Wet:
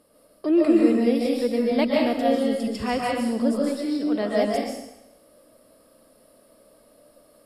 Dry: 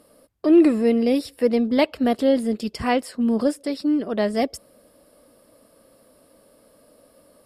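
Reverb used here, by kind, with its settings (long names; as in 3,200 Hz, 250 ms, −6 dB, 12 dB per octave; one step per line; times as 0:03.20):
comb and all-pass reverb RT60 0.86 s, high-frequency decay 1×, pre-delay 100 ms, DRR −3 dB
level −5.5 dB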